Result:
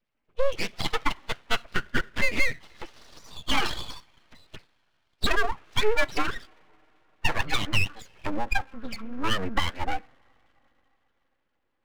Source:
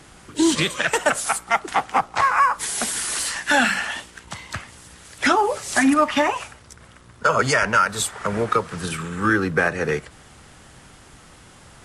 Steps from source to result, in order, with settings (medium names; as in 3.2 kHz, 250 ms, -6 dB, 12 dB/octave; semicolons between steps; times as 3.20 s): expander on every frequency bin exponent 2; compression 2:1, threshold -32 dBFS, peak gain reduction 10 dB; mistuned SSB -54 Hz 160–2700 Hz; on a send at -18 dB: reverberation, pre-delay 3 ms; on the sum: full-wave rectifier; trim +8.5 dB